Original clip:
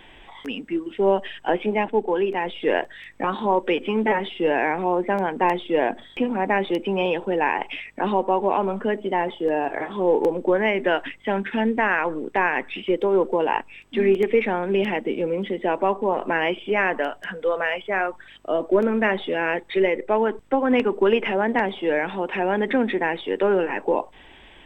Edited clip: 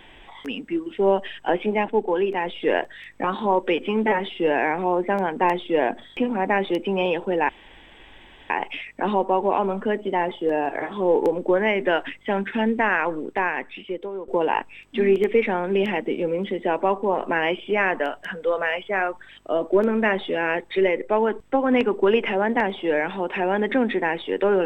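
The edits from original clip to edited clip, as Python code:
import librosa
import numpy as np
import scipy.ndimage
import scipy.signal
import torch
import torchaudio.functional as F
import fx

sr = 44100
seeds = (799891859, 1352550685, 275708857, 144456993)

y = fx.edit(x, sr, fx.insert_room_tone(at_s=7.49, length_s=1.01),
    fx.fade_out_to(start_s=12.09, length_s=1.18, floor_db=-17.0), tone=tone)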